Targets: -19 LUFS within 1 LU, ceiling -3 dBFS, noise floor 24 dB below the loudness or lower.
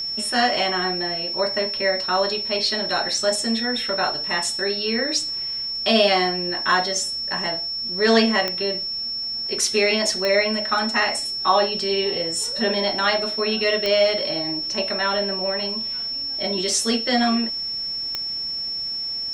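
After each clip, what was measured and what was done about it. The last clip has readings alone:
clicks 4; steady tone 5400 Hz; tone level -25 dBFS; loudness -21.0 LUFS; peak -3.5 dBFS; loudness target -19.0 LUFS
-> de-click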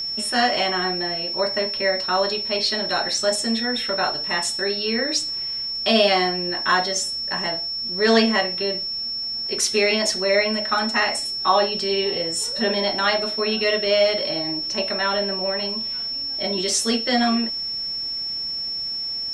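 clicks 0; steady tone 5400 Hz; tone level -25 dBFS
-> notch 5400 Hz, Q 30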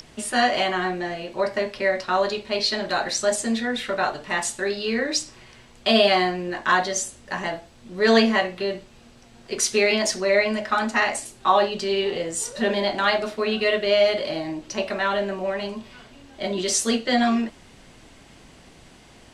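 steady tone none; loudness -23.0 LUFS; peak -4.0 dBFS; loudness target -19.0 LUFS
-> gain +4 dB; limiter -3 dBFS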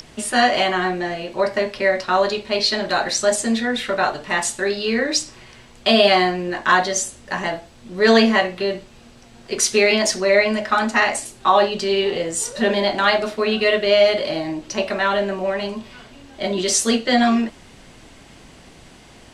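loudness -19.0 LUFS; peak -3.0 dBFS; noise floor -46 dBFS

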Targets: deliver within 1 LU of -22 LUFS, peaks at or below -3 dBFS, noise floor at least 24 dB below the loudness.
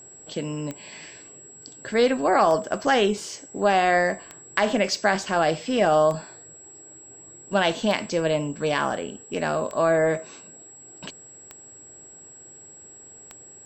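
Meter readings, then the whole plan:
clicks 8; steady tone 7700 Hz; tone level -44 dBFS; loudness -23.5 LUFS; peak -5.0 dBFS; loudness target -22.0 LUFS
-> de-click; notch 7700 Hz, Q 30; gain +1.5 dB

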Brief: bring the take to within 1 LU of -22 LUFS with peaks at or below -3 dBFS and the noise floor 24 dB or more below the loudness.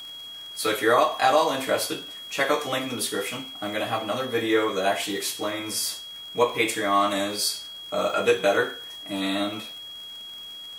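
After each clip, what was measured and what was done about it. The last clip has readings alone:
ticks 54/s; steady tone 3300 Hz; tone level -37 dBFS; loudness -25.0 LUFS; peak -7.0 dBFS; loudness target -22.0 LUFS
-> de-click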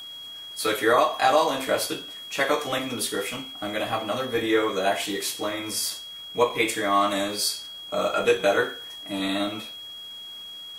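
ticks 0.28/s; steady tone 3300 Hz; tone level -37 dBFS
-> notch 3300 Hz, Q 30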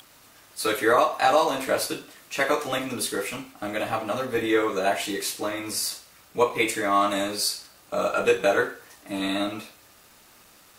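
steady tone none; loudness -25.0 LUFS; peak -7.0 dBFS; loudness target -22.0 LUFS
-> gain +3 dB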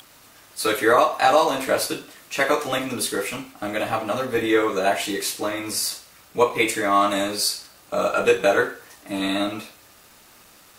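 loudness -22.0 LUFS; peak -4.0 dBFS; noise floor -51 dBFS

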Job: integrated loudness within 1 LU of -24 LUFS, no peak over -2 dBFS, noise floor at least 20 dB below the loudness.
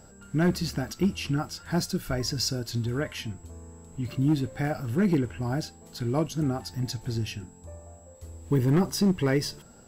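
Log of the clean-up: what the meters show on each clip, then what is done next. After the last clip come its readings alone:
clipped 0.7%; flat tops at -16.5 dBFS; steady tone 7700 Hz; tone level -57 dBFS; loudness -28.0 LUFS; peak -16.5 dBFS; loudness target -24.0 LUFS
-> clip repair -16.5 dBFS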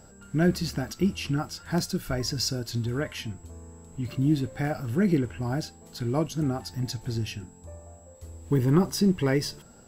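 clipped 0.0%; steady tone 7700 Hz; tone level -57 dBFS
-> notch 7700 Hz, Q 30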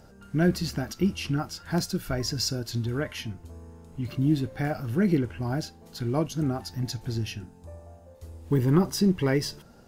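steady tone none; loudness -28.0 LUFS; peak -9.0 dBFS; loudness target -24.0 LUFS
-> gain +4 dB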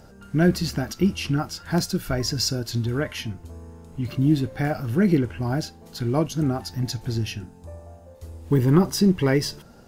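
loudness -24.0 LUFS; peak -5.0 dBFS; noise floor -48 dBFS

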